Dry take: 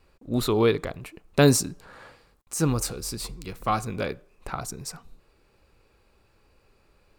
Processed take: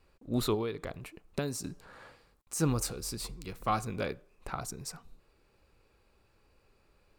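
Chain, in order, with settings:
0:00.54–0:01.64: downward compressor 16 to 1, threshold −25 dBFS, peak gain reduction 14.5 dB
level −5 dB

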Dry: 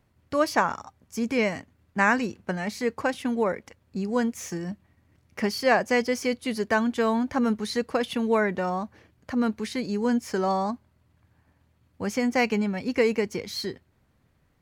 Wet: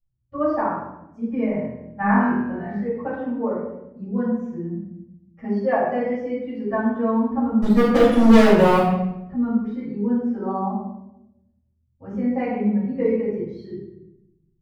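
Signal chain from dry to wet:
spectral dynamics exaggerated over time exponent 1.5
low-pass filter 1,100 Hz 12 dB per octave
0:01.46–0:02.76: flutter between parallel walls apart 4.2 metres, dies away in 0.56 s
0:07.62–0:08.78: leveller curve on the samples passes 5
rectangular room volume 280 cubic metres, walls mixed, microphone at 6.1 metres
level −10.5 dB

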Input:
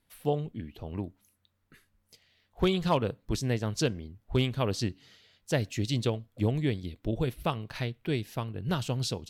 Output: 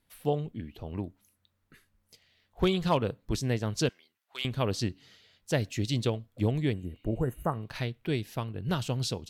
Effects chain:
0:03.89–0:04.45: high-pass filter 1,500 Hz 12 dB per octave
0:06.75–0:07.61: healed spectral selection 2,000–6,100 Hz after

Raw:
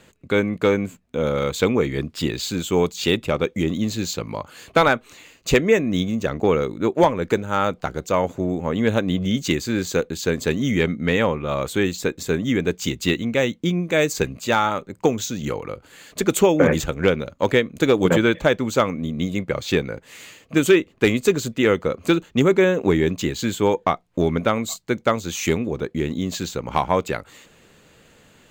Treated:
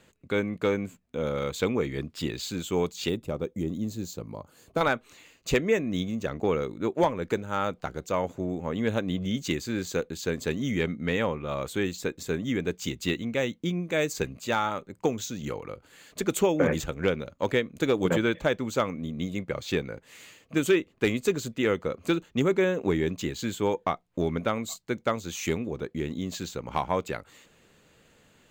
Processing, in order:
0:03.09–0:04.81: parametric band 2,400 Hz −12.5 dB 2.5 octaves
level −7.5 dB

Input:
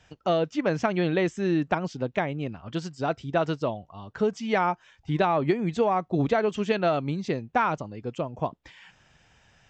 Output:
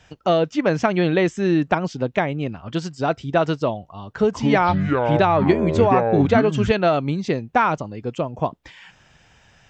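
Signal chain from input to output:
0:04.06–0:06.71: delay with pitch and tempo change per echo 148 ms, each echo −7 semitones, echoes 2
level +6 dB

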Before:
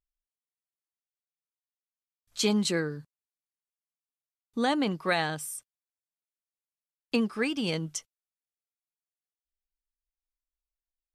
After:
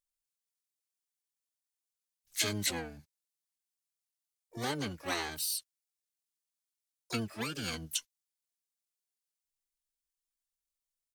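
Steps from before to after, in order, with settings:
first-order pre-emphasis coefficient 0.8
pitch-shifted copies added −12 semitones −1 dB, +7 semitones −5 dB, +12 semitones −13 dB

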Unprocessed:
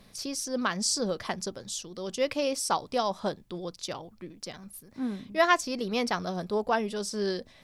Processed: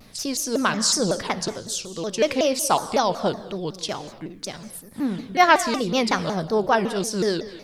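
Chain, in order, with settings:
reverb whose tail is shaped and stops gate 280 ms flat, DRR 12 dB
pitch modulation by a square or saw wave saw down 5.4 Hz, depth 250 cents
level +7 dB

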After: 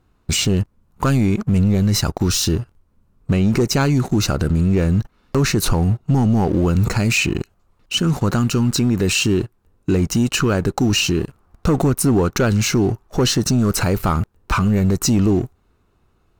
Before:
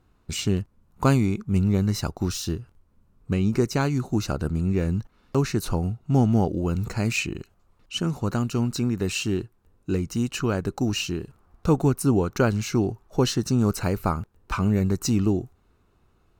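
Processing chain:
leveller curve on the samples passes 2
boost into a limiter +14.5 dB
level −8.5 dB

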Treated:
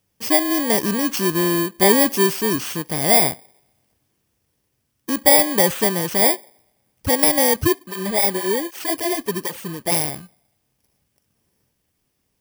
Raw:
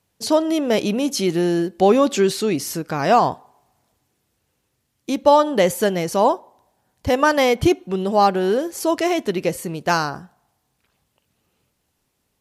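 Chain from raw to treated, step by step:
samples in bit-reversed order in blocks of 32 samples
0:07.56–0:09.92: through-zero flanger with one copy inverted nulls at 1.3 Hz, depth 7.1 ms

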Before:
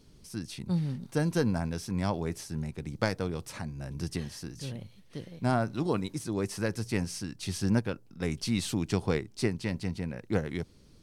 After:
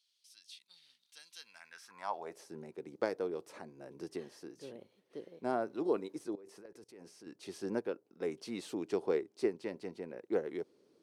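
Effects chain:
high-pass filter sweep 3,500 Hz → 390 Hz, 0:01.38–0:02.51
0:06.35–0:07.27: output level in coarse steps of 23 dB
high-shelf EQ 2,100 Hz −9 dB
level −6.5 dB

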